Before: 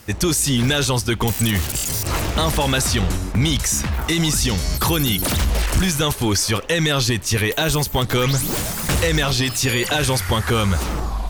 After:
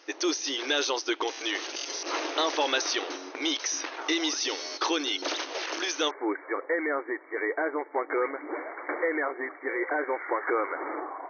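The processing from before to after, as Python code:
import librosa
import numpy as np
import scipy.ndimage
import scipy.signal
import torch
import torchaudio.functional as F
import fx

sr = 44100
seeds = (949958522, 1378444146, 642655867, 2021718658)

y = fx.rider(x, sr, range_db=4, speed_s=2.0)
y = fx.brickwall_bandpass(y, sr, low_hz=280.0, high_hz=fx.steps((0.0, 6500.0), (6.09, 2300.0)))
y = F.gain(torch.from_numpy(y), -6.0).numpy()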